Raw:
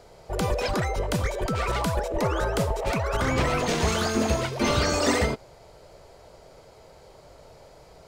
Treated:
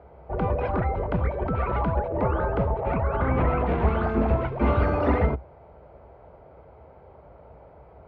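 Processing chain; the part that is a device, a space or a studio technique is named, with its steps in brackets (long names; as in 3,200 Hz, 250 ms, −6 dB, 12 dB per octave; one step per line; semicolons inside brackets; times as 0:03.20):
sub-octave bass pedal (sub-octave generator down 2 octaves, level 0 dB; loudspeaker in its box 62–2,000 Hz, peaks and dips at 66 Hz +9 dB, 810 Hz +3 dB, 1,800 Hz −6 dB)
0:02.68–0:04.09: parametric band 5,900 Hz −6 dB 0.76 octaves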